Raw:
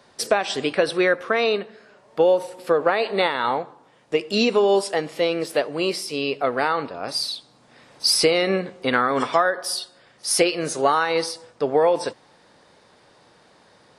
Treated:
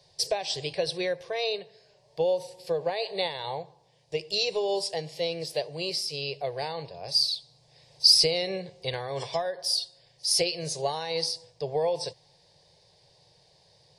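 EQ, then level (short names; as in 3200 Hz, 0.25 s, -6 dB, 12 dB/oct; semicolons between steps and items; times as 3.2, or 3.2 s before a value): resonant low shelf 200 Hz +7 dB, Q 3; bell 4800 Hz +10.5 dB 0.71 oct; fixed phaser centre 550 Hz, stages 4; -7.0 dB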